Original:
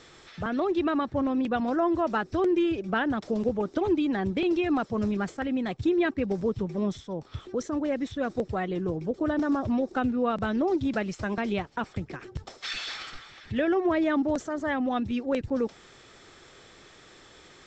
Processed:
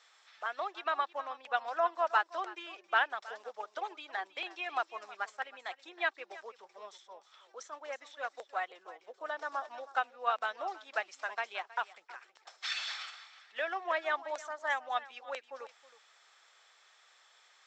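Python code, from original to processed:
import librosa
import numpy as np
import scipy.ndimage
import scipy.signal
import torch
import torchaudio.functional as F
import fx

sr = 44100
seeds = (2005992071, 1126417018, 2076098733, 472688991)

p1 = scipy.signal.sosfilt(scipy.signal.butter(4, 720.0, 'highpass', fs=sr, output='sos'), x)
p2 = p1 + fx.echo_single(p1, sr, ms=319, db=-12.5, dry=0)
p3 = fx.upward_expand(p2, sr, threshold_db=-49.0, expansion=1.5)
y = F.gain(torch.from_numpy(p3), 2.0).numpy()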